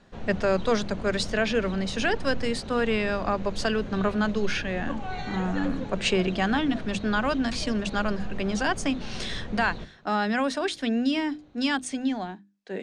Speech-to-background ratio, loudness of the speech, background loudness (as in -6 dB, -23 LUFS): 11.0 dB, -27.5 LUFS, -38.5 LUFS